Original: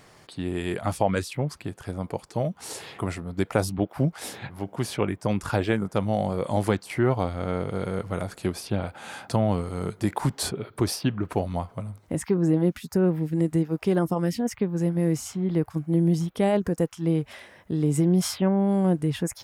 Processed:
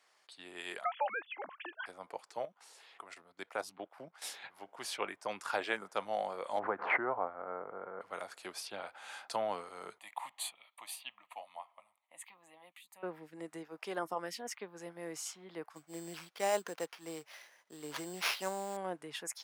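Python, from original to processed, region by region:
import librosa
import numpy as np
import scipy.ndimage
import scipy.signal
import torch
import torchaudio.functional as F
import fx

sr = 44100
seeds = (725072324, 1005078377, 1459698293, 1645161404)

y = fx.chain(x, sr, fx.sine_speech(),
    fx.peak_eq(hz=240.0, db=-9.0, octaves=2.6),
    fx.band_squash(depth_pct=100), at=(0.84, 1.86))
y = fx.chain(y, sr, fx.high_shelf(hz=5100.0, db=-2.5),
    fx.level_steps(step_db=12), at=(2.45, 4.22))
y = fx.chain(y, sr, fx.lowpass(hz=1500.0, slope=24),
    fx.pre_swell(db_per_s=57.0), at=(6.59, 8.01))
y = fx.chain(y, sr, fx.highpass(hz=950.0, slope=6),
    fx.fixed_phaser(hz=1500.0, stages=6), at=(9.98, 13.03))
y = fx.chain(y, sr, fx.high_shelf(hz=11000.0, db=5.5),
    fx.sample_hold(seeds[0], rate_hz=7900.0, jitter_pct=0), at=(15.75, 18.77))
y = scipy.signal.sosfilt(scipy.signal.butter(2, 780.0, 'highpass', fs=sr, output='sos'), y)
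y = fx.high_shelf(y, sr, hz=11000.0, db=-9.5)
y = fx.band_widen(y, sr, depth_pct=40)
y = y * librosa.db_to_amplitude(-4.5)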